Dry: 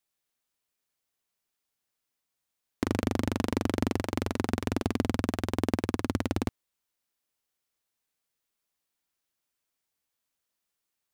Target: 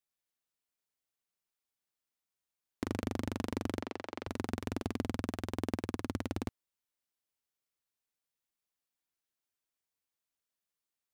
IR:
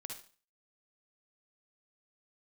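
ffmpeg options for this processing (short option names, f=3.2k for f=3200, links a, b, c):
-filter_complex "[0:a]asettb=1/sr,asplit=3[a][b][c];[a]atrim=end=3.824[d];[b]atrim=start=3.82:end=4.27,asetpts=PTS-STARTPTS,afade=t=in:d=0.004:c=qsin,afade=t=out:st=0.446:d=0.004:c=qsin,acrossover=split=320 5500:gain=0.158 1 0.178[e][f][g];[e][f][g]amix=inputs=3:normalize=0[h];[c]atrim=start=4.266[i];[d][h]acrossfade=d=0.004:c1=hsin:c2=qsin[j];[j][i]acrossfade=d=0.004:c1=qsin:c2=hsin,volume=-7.5dB"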